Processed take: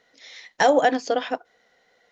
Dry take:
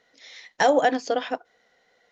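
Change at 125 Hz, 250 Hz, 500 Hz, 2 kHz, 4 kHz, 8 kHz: can't be measured, +1.5 dB, +1.5 dB, +1.5 dB, +1.5 dB, can't be measured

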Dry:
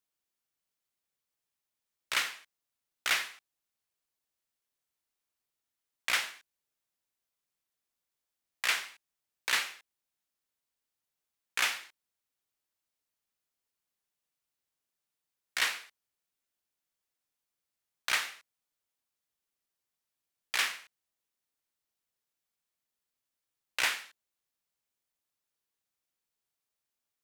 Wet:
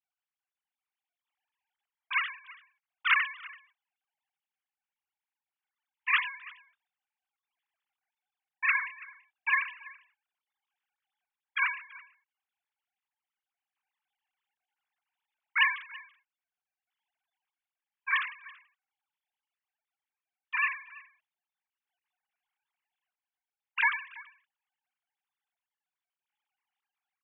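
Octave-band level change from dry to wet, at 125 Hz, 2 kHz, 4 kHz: can't be measured, +5.0 dB, −5.5 dB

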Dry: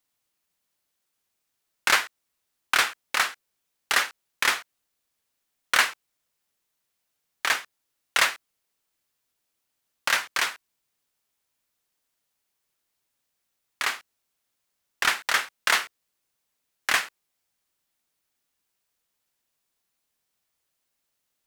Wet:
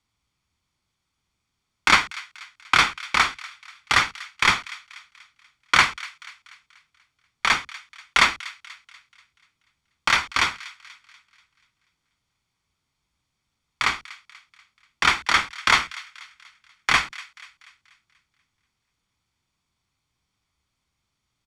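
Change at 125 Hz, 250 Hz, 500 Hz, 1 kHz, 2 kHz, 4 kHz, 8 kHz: can't be measured, +10.0 dB, +1.0 dB, +6.0 dB, +3.5 dB, +4.0 dB, −1.0 dB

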